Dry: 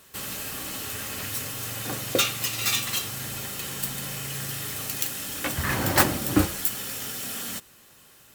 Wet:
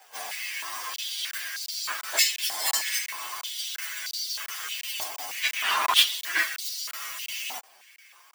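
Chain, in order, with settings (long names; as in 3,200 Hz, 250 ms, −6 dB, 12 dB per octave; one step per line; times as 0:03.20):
partials spread apart or drawn together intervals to 126%
regular buffer underruns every 0.35 s, samples 1,024, zero, from 0:00.96
high-pass on a step sequencer 3.2 Hz 810–4,400 Hz
level +5.5 dB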